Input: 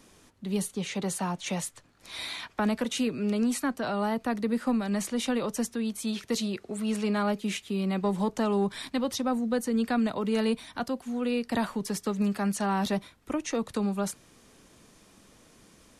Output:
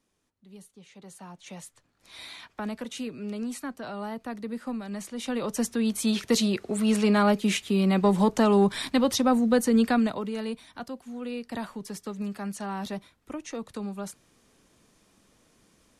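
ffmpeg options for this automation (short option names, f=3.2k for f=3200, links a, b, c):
-af "volume=6dB,afade=t=in:st=0.92:d=1.33:silence=0.237137,afade=t=in:st=5.15:d=0.83:silence=0.237137,afade=t=out:st=9.77:d=0.56:silence=0.251189"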